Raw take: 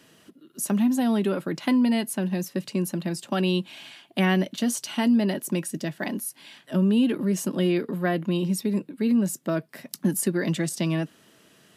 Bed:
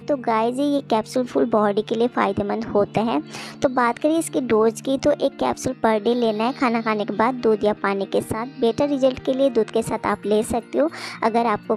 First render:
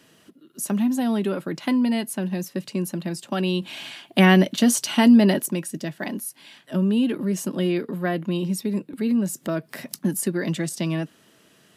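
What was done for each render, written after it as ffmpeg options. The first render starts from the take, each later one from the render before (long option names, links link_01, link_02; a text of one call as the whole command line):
ffmpeg -i in.wav -filter_complex "[0:a]asettb=1/sr,asplit=3[link_01][link_02][link_03];[link_01]atrim=end=8.934[link_04];[link_02]atrim=start=8.93:end=9.99,asetpts=PTS-STARTPTS,afade=type=in:duration=0.004:curve=qsin,afade=type=out:start_time=1.056:duration=0.004:curve=qsin,acompressor=mode=upward:threshold=-26dB:ratio=2.5:attack=3.2:release=140:knee=2.83:detection=peak[link_05];[link_03]atrim=start=9.986[link_06];[link_04][link_05]acrossfade=duration=0.004:curve1=hsin:curve2=qsin[link_07];[link_07][link_06]acrossfade=duration=0.004:curve1=qsin:curve2=hsin,asplit=3[link_08][link_09][link_10];[link_08]atrim=end=3.622[link_11];[link_09]atrim=start=3.618:end=5.462,asetpts=PTS-STARTPTS,volume=7dB[link_12];[link_10]atrim=start=5.458[link_13];[link_11][link_12]acrossfade=duration=0.004:curve1=hsin:curve2=hsin[link_14];[link_14][link_13]acrossfade=duration=0.004:curve1=hsin:curve2=hsin" out.wav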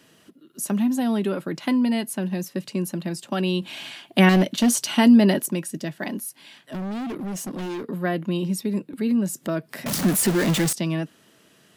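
ffmpeg -i in.wav -filter_complex "[0:a]asettb=1/sr,asplit=3[link_01][link_02][link_03];[link_01]atrim=end=4.294[link_04];[link_02]atrim=start=4.29:end=4.89,asetpts=PTS-STARTPTS,afade=type=in:duration=0.004:curve=qsin,afade=type=out:start_time=0.596:duration=0.004:curve=qsin,volume=13.5dB,asoftclip=hard,volume=-13.5dB[link_05];[link_03]atrim=start=4.886[link_06];[link_04][link_05]acrossfade=duration=0.004:curve1=hsin:curve2=qsin[link_07];[link_07][link_06]acrossfade=duration=0.004:curve1=qsin:curve2=hsin,asettb=1/sr,asplit=3[link_08][link_09][link_10];[link_08]atrim=end=6.264[link_11];[link_09]atrim=start=6.26:end=7.86,asetpts=PTS-STARTPTS,afade=type=in:duration=0.004:curve=qsin,afade=type=out:start_time=1.596:duration=0.004:curve=qsin,asoftclip=type=hard:threshold=-28dB[link_12];[link_10]atrim=start=7.856[link_13];[link_11][link_12]acrossfade=duration=0.004:curve1=hsin:curve2=qsin[link_14];[link_14][link_13]acrossfade=duration=0.004:curve1=qsin:curve2=hsin,asettb=1/sr,asplit=3[link_15][link_16][link_17];[link_15]atrim=end=9.864[link_18];[link_16]atrim=start=9.86:end=10.73,asetpts=PTS-STARTPTS,afade=type=in:duration=0.004:curve=qsin,afade=type=out:start_time=0.866:duration=0.004:curve=qsin,aeval=exprs='val(0)+0.5*0.0944*sgn(val(0))':channel_layout=same[link_19];[link_17]atrim=start=10.726[link_20];[link_18][link_19]acrossfade=duration=0.004:curve1=hsin:curve2=qsin[link_21];[link_21][link_20]acrossfade=duration=0.004:curve1=qsin:curve2=hsin" out.wav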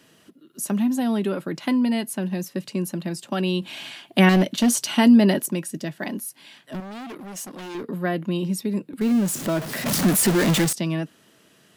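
ffmpeg -i in.wav -filter_complex "[0:a]asettb=1/sr,asplit=3[link_01][link_02][link_03];[link_01]atrim=end=6.804[link_04];[link_02]atrim=start=6.8:end=7.75,asetpts=PTS-STARTPTS,afade=type=in:duration=0.004:curve=qsin,afade=type=out:start_time=0.946:duration=0.004:curve=qsin,lowshelf=frequency=370:gain=-11.5[link_05];[link_03]atrim=start=7.746[link_06];[link_04][link_05]acrossfade=duration=0.004:curve1=hsin:curve2=qsin[link_07];[link_07][link_06]acrossfade=duration=0.004:curve1=qsin:curve2=hsin,asettb=1/sr,asplit=3[link_08][link_09][link_10];[link_08]atrim=end=9.014[link_11];[link_09]atrim=start=9.01:end=10.65,asetpts=PTS-STARTPTS,afade=type=in:duration=0.004:curve=qsin,afade=type=out:start_time=1.636:duration=0.004:curve=qsin,aeval=exprs='val(0)+0.5*0.0447*sgn(val(0))':channel_layout=same[link_12];[link_10]atrim=start=10.646[link_13];[link_11][link_12]acrossfade=duration=0.004:curve1=hsin:curve2=qsin[link_14];[link_14][link_13]acrossfade=duration=0.004:curve1=qsin:curve2=hsin" out.wav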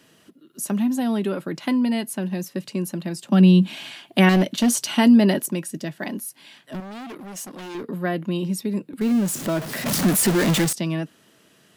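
ffmpeg -i in.wav -filter_complex "[0:a]asettb=1/sr,asplit=3[link_01][link_02][link_03];[link_01]atrim=end=3.294[link_04];[link_02]atrim=start=3.29:end=3.76,asetpts=PTS-STARTPTS,afade=type=in:duration=0.004:curve=qsin,afade=type=out:start_time=0.466:duration=0.004:curve=qsin,highpass=frequency=190:width_type=q:width=4.9[link_05];[link_03]atrim=start=3.756[link_06];[link_04][link_05]acrossfade=duration=0.004:curve1=hsin:curve2=qsin[link_07];[link_07][link_06]acrossfade=duration=0.004:curve1=qsin:curve2=hsin" out.wav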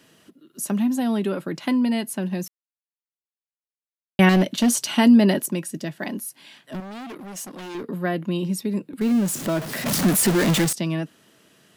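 ffmpeg -i in.wav -filter_complex "[0:a]asplit=3[link_01][link_02][link_03];[link_01]atrim=end=2.48,asetpts=PTS-STARTPTS,afade=type=out:start_time=2.476:duration=0.004:curve=hsin[link_04];[link_02]atrim=start=2.48:end=4.19,asetpts=PTS-STARTPTS,volume=0[link_05];[link_03]atrim=start=4.19,asetpts=PTS-STARTPTS,afade=type=in:duration=0.004:curve=hsin[link_06];[link_04][link_05][link_06]concat=n=3:v=0:a=1" out.wav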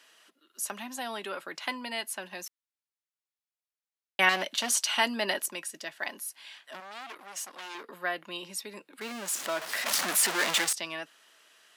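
ffmpeg -i in.wav -af "highpass=910,highshelf=frequency=11000:gain=-9" out.wav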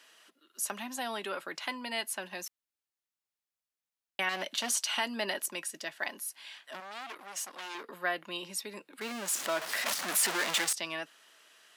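ffmpeg -i in.wav -af "alimiter=limit=-19dB:level=0:latency=1:release=295" out.wav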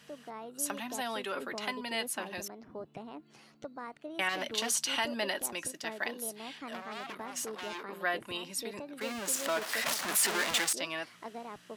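ffmpeg -i in.wav -i bed.wav -filter_complex "[1:a]volume=-24.5dB[link_01];[0:a][link_01]amix=inputs=2:normalize=0" out.wav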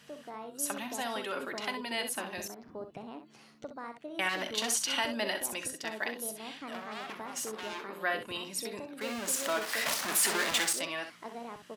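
ffmpeg -i in.wav -af "aecho=1:1:42|64:0.168|0.355" out.wav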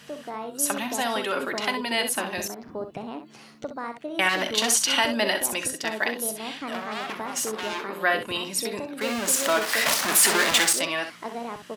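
ffmpeg -i in.wav -af "volume=9dB" out.wav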